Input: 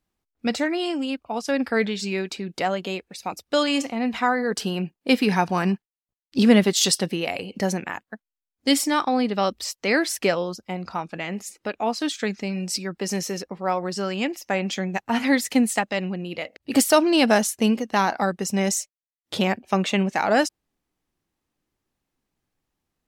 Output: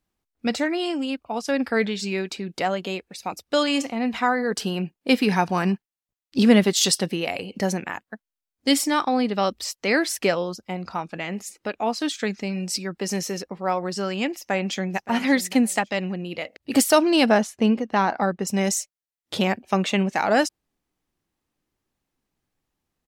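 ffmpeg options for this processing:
ffmpeg -i in.wav -filter_complex "[0:a]asplit=2[link_01][link_02];[link_02]afade=type=in:start_time=14.32:duration=0.01,afade=type=out:start_time=15.01:duration=0.01,aecho=0:1:570|1140:0.158489|0.0396223[link_03];[link_01][link_03]amix=inputs=2:normalize=0,asettb=1/sr,asplit=3[link_04][link_05][link_06];[link_04]atrim=end=17.294[link_07];[link_05]atrim=start=17.29:end=18.47,asetpts=PTS-STARTPTS,afade=type=in:duration=0.004:curve=qsin,afade=type=out:start_time=1.176:duration=0.004:curve=qsin,aemphasis=mode=reproduction:type=75fm[link_08];[link_06]atrim=start=18.466[link_09];[link_07][link_08]acrossfade=duration=0.004:curve1=hsin:curve2=qsin[link_10];[link_10][link_09]acrossfade=duration=0.004:curve1=qsin:curve2=hsin" out.wav

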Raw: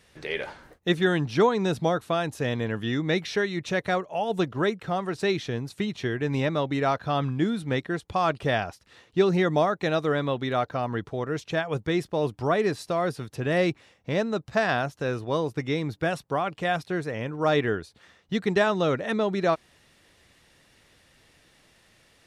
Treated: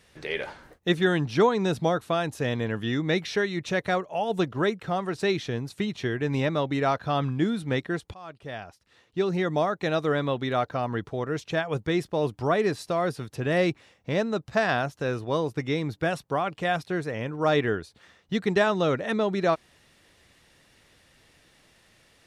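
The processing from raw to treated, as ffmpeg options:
ffmpeg -i in.wav -filter_complex "[0:a]asplit=2[link_01][link_02];[link_01]atrim=end=8.14,asetpts=PTS-STARTPTS,afade=type=out:start_time=8.136:duration=0.004:curve=hsin:silence=0.0707946[link_03];[link_02]atrim=start=8.14,asetpts=PTS-STARTPTS,afade=type=in:duration=1.97:silence=0.0707946[link_04];[link_03][link_04]concat=n=2:v=0:a=1" out.wav

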